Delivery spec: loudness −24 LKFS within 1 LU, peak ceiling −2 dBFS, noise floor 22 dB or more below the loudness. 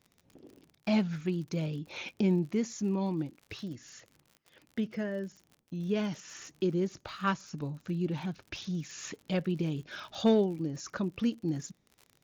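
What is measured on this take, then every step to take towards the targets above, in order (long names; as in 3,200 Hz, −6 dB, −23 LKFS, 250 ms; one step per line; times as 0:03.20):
crackle rate 59 per second; integrated loudness −33.5 LKFS; sample peak −15.0 dBFS; target loudness −24.0 LKFS
→ click removal
level +9.5 dB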